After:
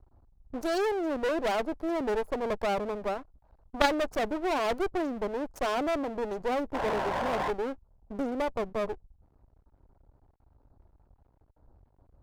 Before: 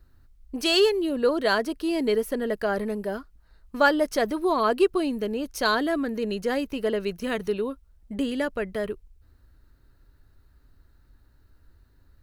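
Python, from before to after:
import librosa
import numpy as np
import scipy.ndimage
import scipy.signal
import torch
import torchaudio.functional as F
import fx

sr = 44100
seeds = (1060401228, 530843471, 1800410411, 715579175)

y = fx.wiener(x, sr, points=15)
y = fx.curve_eq(y, sr, hz=(180.0, 380.0, 820.0, 2100.0, 5900.0), db=(0, 3, 13, -20, -1))
y = fx.spec_paint(y, sr, seeds[0], shape='noise', start_s=6.74, length_s=0.77, low_hz=510.0, high_hz=1100.0, level_db=-23.0)
y = np.maximum(y, 0.0)
y = fx.cheby_harmonics(y, sr, harmonics=(4,), levels_db=(-12,), full_scale_db=-2.0)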